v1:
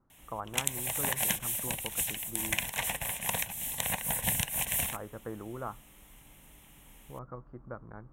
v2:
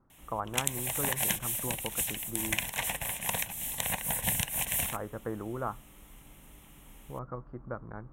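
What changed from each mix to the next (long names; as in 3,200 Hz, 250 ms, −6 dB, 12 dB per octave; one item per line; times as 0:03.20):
speech +4.0 dB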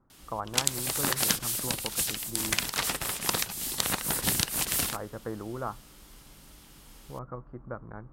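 background: remove phaser with its sweep stopped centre 1,300 Hz, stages 6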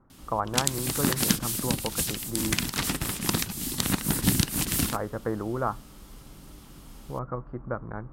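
speech +6.5 dB
background: add low shelf with overshoot 380 Hz +9 dB, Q 1.5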